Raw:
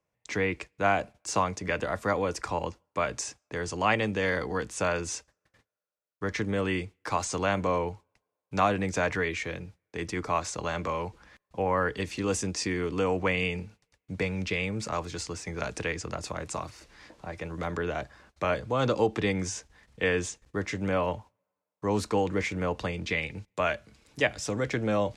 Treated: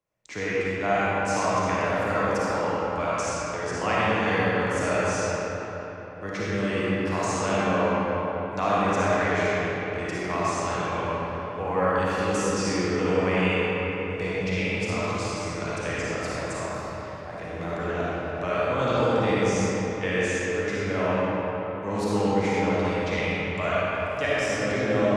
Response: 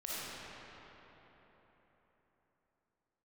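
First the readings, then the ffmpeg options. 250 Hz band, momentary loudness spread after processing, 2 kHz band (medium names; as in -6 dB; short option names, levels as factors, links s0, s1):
+5.0 dB, 8 LU, +4.0 dB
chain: -filter_complex "[1:a]atrim=start_sample=2205[s0];[0:a][s0]afir=irnorm=-1:irlink=0,volume=1.12"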